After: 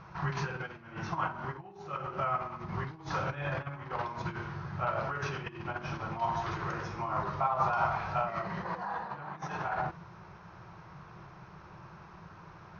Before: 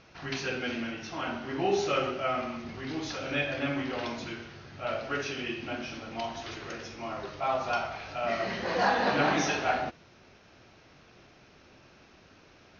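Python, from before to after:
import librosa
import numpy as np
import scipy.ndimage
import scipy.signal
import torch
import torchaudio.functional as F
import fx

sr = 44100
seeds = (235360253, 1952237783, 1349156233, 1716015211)

y = fx.small_body(x, sr, hz=(220.0, 320.0), ring_ms=40, db=16)
y = fx.over_compress(y, sr, threshold_db=-29.0, ratio=-1.0)
y = fx.curve_eq(y, sr, hz=(170.0, 240.0, 360.0, 680.0, 980.0, 2800.0), db=(0, -28, -16, -6, 8, -11))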